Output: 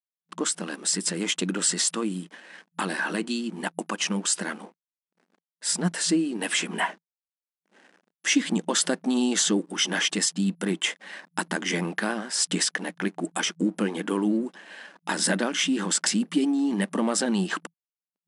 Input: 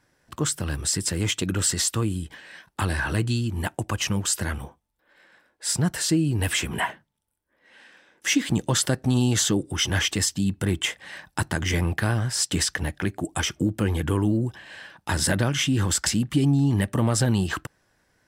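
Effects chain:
slack as between gear wheels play −43.5 dBFS
brick-wall band-pass 170–11,000 Hz

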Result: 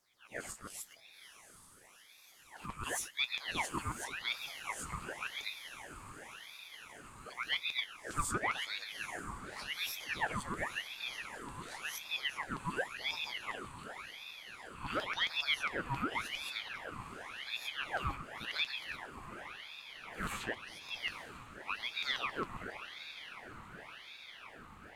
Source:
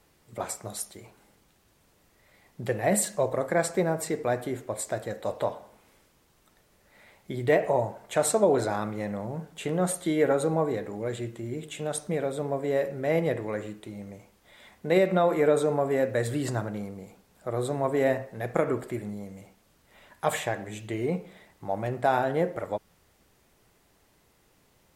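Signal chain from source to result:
peak hold with a rise ahead of every peak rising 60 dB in 0.44 s
0:02.66–0:03.29: downward expander −22 dBFS
0:07.33–0:08.41: flat-topped bell 2,100 Hz −13 dB
auto-filter high-pass saw down 7.4 Hz 240–3,600 Hz
soft clipping −15 dBFS, distortion −13 dB
flanger 0.97 Hz, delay 6 ms, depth 6.3 ms, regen +60%
feedback delay with all-pass diffusion 858 ms, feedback 75%, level −11 dB
ring modulator whose carrier an LFO sweeps 1,800 Hz, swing 70%, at 0.91 Hz
level −6 dB

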